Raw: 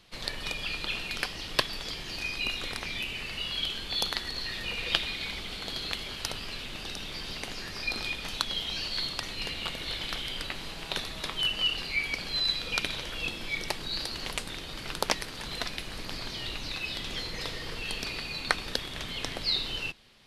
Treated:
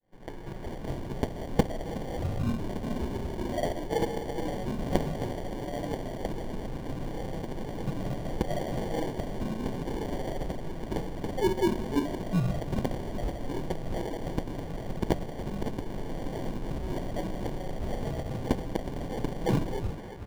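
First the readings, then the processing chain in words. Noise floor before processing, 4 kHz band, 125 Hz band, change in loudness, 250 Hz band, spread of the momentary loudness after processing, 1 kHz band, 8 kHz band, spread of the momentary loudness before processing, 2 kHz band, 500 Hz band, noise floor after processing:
-40 dBFS, -17.5 dB, +11.5 dB, -1.5 dB, +12.5 dB, 8 LU, +3.0 dB, -8.0 dB, 8 LU, -11.5 dB, +10.0 dB, -39 dBFS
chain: fade-in on the opening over 1.44 s; FFT band-reject 300–830 Hz; comb 6.4 ms, depth 91%; on a send: band-passed feedback delay 368 ms, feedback 44%, band-pass 850 Hz, level -9.5 dB; on the sum: sample-and-hold 34×; dynamic bell 1.6 kHz, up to -6 dB, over -48 dBFS, Q 1; reverse; upward compressor, threshold -32 dBFS; reverse; treble shelf 3.4 kHz -11 dB; trim +1 dB

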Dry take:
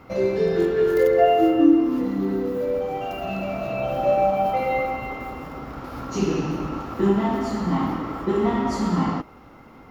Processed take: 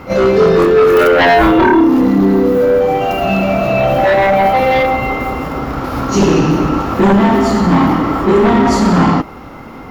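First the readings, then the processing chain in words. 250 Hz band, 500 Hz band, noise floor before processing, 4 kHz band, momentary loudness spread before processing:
+10.5 dB, +10.5 dB, -47 dBFS, +15.0 dB, 15 LU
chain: sine folder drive 11 dB, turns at -6 dBFS; pre-echo 30 ms -13 dB

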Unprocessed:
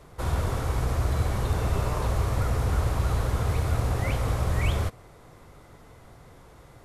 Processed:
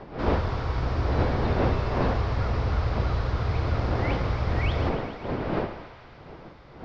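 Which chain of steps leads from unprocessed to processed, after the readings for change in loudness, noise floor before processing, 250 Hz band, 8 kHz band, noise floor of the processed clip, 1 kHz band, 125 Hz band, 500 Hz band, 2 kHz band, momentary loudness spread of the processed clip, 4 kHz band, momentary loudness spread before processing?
0.0 dB, -51 dBFS, +5.5 dB, under -15 dB, -47 dBFS, +3.0 dB, -0.5 dB, +4.5 dB, +2.5 dB, 9 LU, +0.5 dB, 2 LU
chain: wind noise 560 Hz -31 dBFS; elliptic low-pass 5.1 kHz, stop band 70 dB; thinning echo 139 ms, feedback 81%, high-pass 770 Hz, level -11 dB

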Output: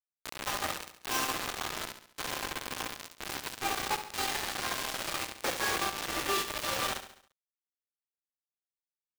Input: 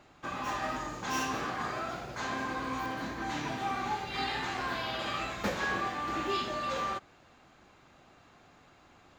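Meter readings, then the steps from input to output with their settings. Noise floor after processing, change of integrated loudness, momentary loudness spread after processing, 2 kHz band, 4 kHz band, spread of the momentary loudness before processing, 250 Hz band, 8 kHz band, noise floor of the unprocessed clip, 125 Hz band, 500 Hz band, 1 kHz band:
under -85 dBFS, +0.5 dB, 9 LU, 0.0 dB, +4.5 dB, 4 LU, -5.5 dB, +10.0 dB, -60 dBFS, -5.0 dB, -1.5 dB, -2.5 dB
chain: steep high-pass 290 Hz 36 dB/octave; bit crusher 5-bit; feedback delay 69 ms, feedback 48%, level -10.5 dB

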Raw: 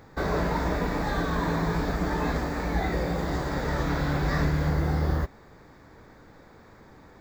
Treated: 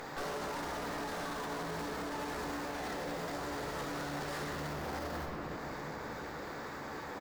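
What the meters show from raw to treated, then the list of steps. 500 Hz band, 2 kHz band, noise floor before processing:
-8.5 dB, -7.5 dB, -52 dBFS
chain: one-sided wavefolder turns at -22.5 dBFS; high-pass 630 Hz 6 dB/octave; doubling 14 ms -10.5 dB; upward compressor, threshold -42 dBFS; valve stage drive 41 dB, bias 0.65; simulated room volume 160 m³, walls hard, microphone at 0.34 m; dynamic bell 2.6 kHz, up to -5 dB, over -57 dBFS, Q 0.93; peak limiter -40.5 dBFS, peak gain reduction 9.5 dB; trim +9 dB

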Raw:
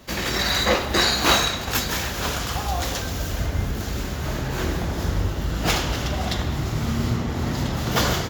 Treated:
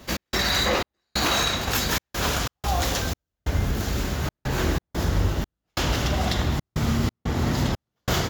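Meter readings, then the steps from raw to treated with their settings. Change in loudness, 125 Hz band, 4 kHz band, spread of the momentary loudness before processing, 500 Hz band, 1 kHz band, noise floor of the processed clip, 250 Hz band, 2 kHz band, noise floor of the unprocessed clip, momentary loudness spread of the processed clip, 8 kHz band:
-2.0 dB, -0.5 dB, -2.5 dB, 8 LU, -2.0 dB, -2.0 dB, -85 dBFS, -1.0 dB, -2.5 dB, -29 dBFS, 7 LU, -2.0 dB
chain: trance gate "x.xxx..xxxxx.x" 91 bpm -60 dB; peak limiter -14 dBFS, peak gain reduction 10.5 dB; trim +1.5 dB

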